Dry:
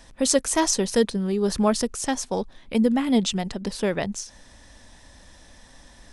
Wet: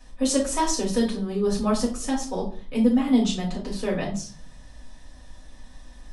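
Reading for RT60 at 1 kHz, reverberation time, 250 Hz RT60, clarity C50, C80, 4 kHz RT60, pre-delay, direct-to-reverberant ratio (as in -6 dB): 0.40 s, 0.45 s, 0.70 s, 8.0 dB, 13.0 dB, 0.30 s, 4 ms, -6.0 dB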